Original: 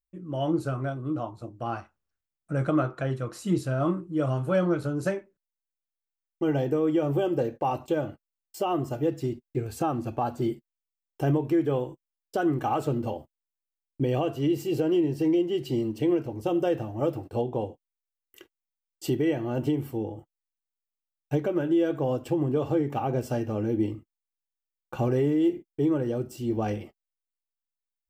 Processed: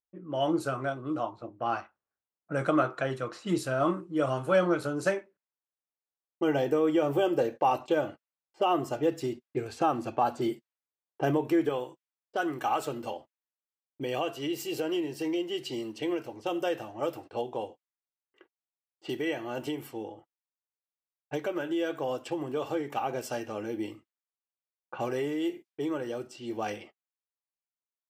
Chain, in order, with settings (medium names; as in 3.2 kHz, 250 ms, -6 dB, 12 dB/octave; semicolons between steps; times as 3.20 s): level-controlled noise filter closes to 960 Hz, open at -24.5 dBFS; high-pass 590 Hz 6 dB/octave, from 11.69 s 1.3 kHz; trim +4.5 dB